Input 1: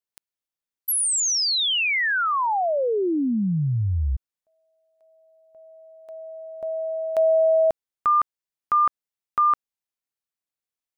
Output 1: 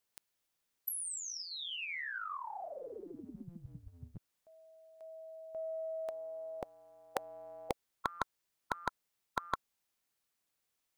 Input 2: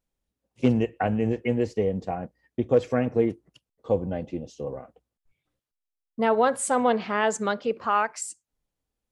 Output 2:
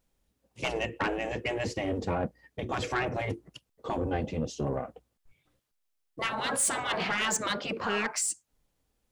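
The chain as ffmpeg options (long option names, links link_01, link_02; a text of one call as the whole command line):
ffmpeg -i in.wav -af "afftfilt=real='re*lt(hypot(re,im),0.158)':imag='im*lt(hypot(re,im),0.158)':win_size=1024:overlap=0.75,asoftclip=type=tanh:threshold=-29dB,aeval=exprs='0.0355*(cos(1*acos(clip(val(0)/0.0355,-1,1)))-cos(1*PI/2))+0.000316*(cos(4*acos(clip(val(0)/0.0355,-1,1)))-cos(4*PI/2))':channel_layout=same,volume=8dB" out.wav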